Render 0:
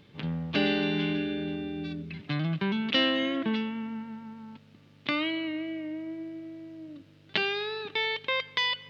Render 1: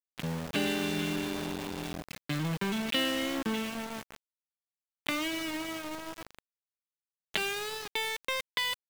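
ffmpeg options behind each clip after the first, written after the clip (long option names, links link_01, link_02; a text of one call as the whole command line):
ffmpeg -i in.wav -af "acompressor=threshold=-40dB:ratio=1.5,aeval=exprs='val(0)*gte(abs(val(0)),0.0168)':channel_layout=same,volume=2.5dB" out.wav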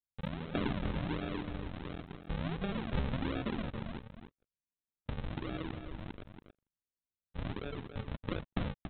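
ffmpeg -i in.wav -filter_complex "[0:a]aresample=8000,acrusher=samples=16:mix=1:aa=0.000001:lfo=1:lforange=16:lforate=1.4,aresample=44100,asplit=2[link_01][link_02];[link_02]adelay=279.9,volume=-8dB,highshelf=frequency=4000:gain=-6.3[link_03];[link_01][link_03]amix=inputs=2:normalize=0,volume=-4.5dB" out.wav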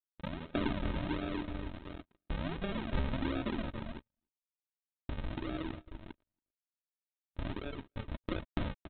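ffmpeg -i in.wav -af "agate=range=-41dB:threshold=-40dB:ratio=16:detection=peak,aecho=1:1:3.2:0.38" out.wav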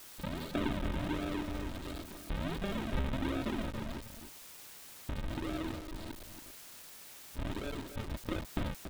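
ffmpeg -i in.wav -af "aeval=exprs='val(0)+0.5*0.0133*sgn(val(0))':channel_layout=same,volume=-2dB" out.wav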